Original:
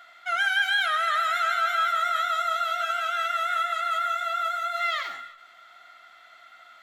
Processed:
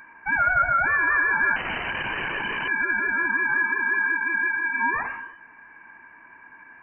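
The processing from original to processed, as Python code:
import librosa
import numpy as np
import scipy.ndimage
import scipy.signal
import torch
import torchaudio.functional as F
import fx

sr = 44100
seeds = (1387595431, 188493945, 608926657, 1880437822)

y = fx.overflow_wrap(x, sr, gain_db=23.5, at=(1.56, 2.68))
y = fx.freq_invert(y, sr, carrier_hz=3000)
y = F.gain(torch.from_numpy(y), 3.5).numpy()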